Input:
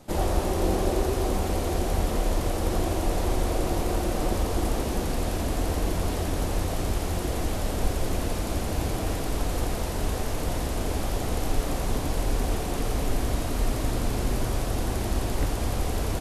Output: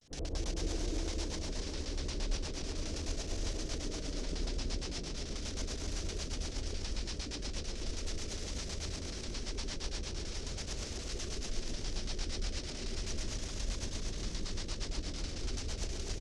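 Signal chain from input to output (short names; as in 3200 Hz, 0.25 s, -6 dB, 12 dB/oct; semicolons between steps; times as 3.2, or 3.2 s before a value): passive tone stack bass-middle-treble 5-5-5; notches 60/120/180/240 Hz; LFO low-pass square 9.2 Hz 470–6700 Hz; vibrato 0.39 Hz 85 cents; pitch shift -3 st; rotary speaker horn 8 Hz; on a send: split-band echo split 430 Hz, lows 85 ms, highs 0.249 s, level -3.5 dB; on the sum: gain +2.5 dB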